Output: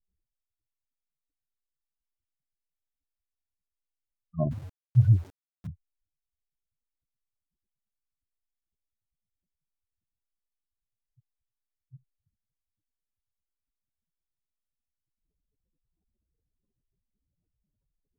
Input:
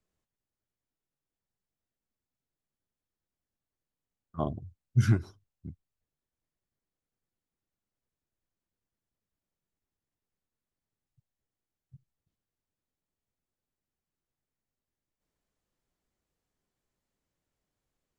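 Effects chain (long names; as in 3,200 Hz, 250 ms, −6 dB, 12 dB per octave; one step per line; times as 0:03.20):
expanding power law on the bin magnitudes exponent 3.3
0:04.51–0:05.67: centre clipping without the shift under −49.5 dBFS
level +4.5 dB
AAC 192 kbit/s 48,000 Hz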